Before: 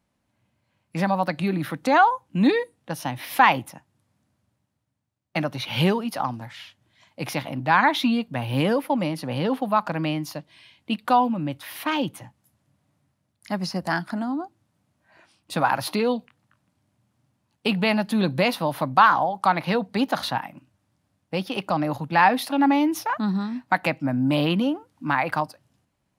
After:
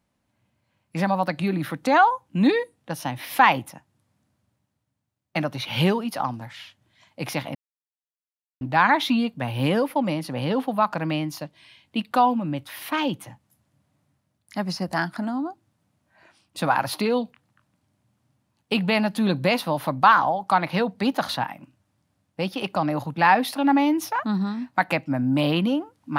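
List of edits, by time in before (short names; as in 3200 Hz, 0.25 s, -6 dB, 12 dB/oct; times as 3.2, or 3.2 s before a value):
7.55 insert silence 1.06 s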